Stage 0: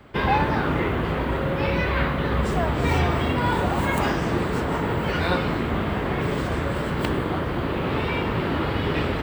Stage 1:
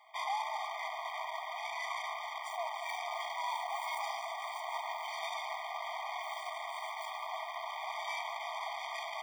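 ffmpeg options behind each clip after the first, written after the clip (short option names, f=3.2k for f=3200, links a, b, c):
-af "alimiter=limit=-15dB:level=0:latency=1:release=44,aeval=exprs='(tanh(31.6*val(0)+0.75)-tanh(0.75))/31.6':c=same,afftfilt=real='re*eq(mod(floor(b*sr/1024/620),2),1)':imag='im*eq(mod(floor(b*sr/1024/620),2),1)':win_size=1024:overlap=0.75"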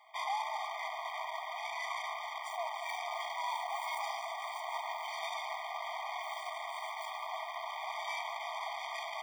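-af anull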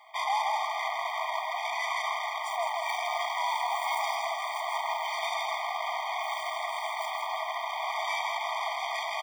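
-af "aecho=1:1:162:0.562,volume=6.5dB"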